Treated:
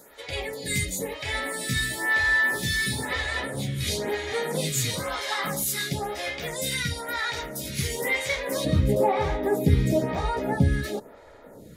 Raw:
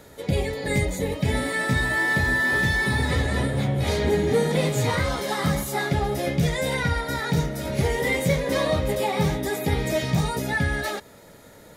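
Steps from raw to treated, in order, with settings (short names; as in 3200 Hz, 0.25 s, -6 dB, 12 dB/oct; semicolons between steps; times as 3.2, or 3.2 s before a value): tilt shelf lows -6.5 dB, about 1400 Hz, from 8.64 s lows +5 dB; photocell phaser 1 Hz; gain +1 dB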